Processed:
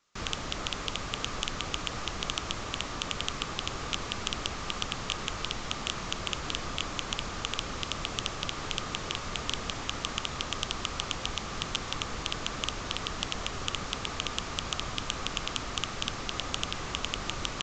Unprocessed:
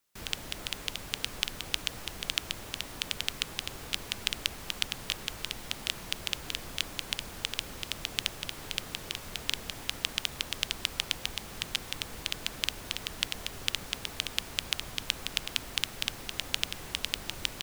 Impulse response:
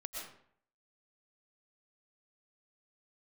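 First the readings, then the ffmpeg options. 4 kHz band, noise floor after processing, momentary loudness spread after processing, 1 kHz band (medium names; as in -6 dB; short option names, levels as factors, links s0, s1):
-0.5 dB, -38 dBFS, 2 LU, +9.5 dB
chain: -af "equalizer=f=1200:t=o:w=0.29:g=8.5,aresample=16000,asoftclip=type=hard:threshold=0.075,aresample=44100,volume=2.11"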